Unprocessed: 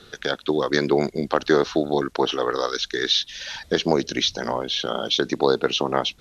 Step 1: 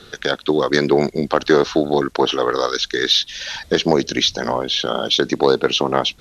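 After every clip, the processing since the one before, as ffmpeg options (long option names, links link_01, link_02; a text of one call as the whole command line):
ffmpeg -i in.wav -af "acontrast=28" out.wav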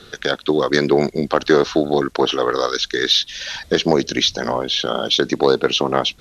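ffmpeg -i in.wav -af "bandreject=frequency=880:width=18" out.wav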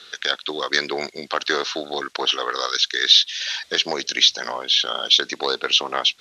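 ffmpeg -i in.wav -af "bandpass=frequency=3600:width_type=q:width=0.64:csg=0,volume=3dB" out.wav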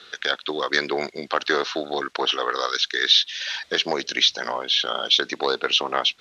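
ffmpeg -i in.wav -af "highshelf=frequency=3900:gain=-10,volume=1.5dB" out.wav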